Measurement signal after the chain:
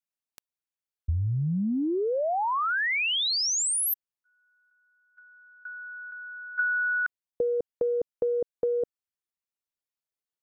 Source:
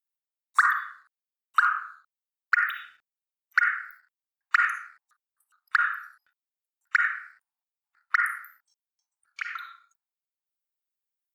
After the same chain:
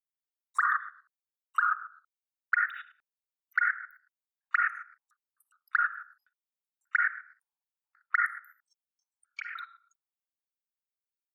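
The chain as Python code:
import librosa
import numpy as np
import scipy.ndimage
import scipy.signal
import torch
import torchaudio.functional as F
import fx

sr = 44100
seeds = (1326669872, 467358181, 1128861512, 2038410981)

y = fx.envelope_sharpen(x, sr, power=1.5)
y = fx.level_steps(y, sr, step_db=14)
y = fx.transient(y, sr, attack_db=3, sustain_db=-1)
y = y * 10.0 ** (1.5 / 20.0)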